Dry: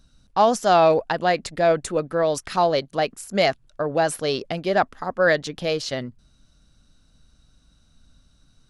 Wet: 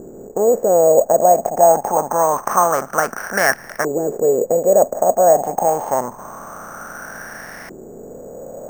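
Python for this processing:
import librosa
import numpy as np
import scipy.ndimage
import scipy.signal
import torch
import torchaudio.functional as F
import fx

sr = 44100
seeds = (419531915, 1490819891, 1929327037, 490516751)

y = fx.bin_compress(x, sr, power=0.4)
y = fx.filter_lfo_lowpass(y, sr, shape='saw_up', hz=0.26, low_hz=370.0, high_hz=2000.0, q=5.9)
y = np.repeat(y[::6], 6)[:len(y)]
y = y * 10.0 ** (-6.0 / 20.0)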